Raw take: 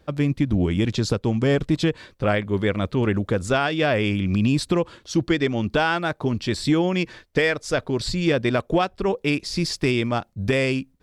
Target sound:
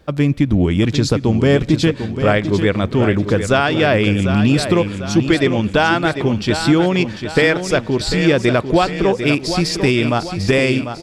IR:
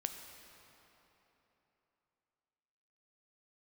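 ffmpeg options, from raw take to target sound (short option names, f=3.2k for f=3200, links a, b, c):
-filter_complex "[0:a]aecho=1:1:747|1494|2241|2988|3735:0.355|0.17|0.0817|0.0392|0.0188,asplit=2[a][b];[1:a]atrim=start_sample=2205[c];[b][c]afir=irnorm=-1:irlink=0,volume=-17dB[d];[a][d]amix=inputs=2:normalize=0,volume=5dB"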